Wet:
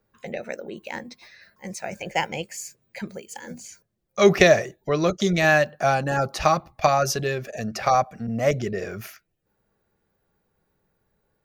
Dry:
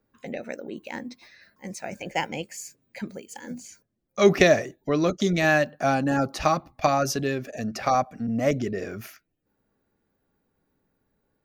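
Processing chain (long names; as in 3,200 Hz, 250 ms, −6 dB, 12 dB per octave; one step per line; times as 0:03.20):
parametric band 270 Hz −14.5 dB 0.31 octaves
level +3 dB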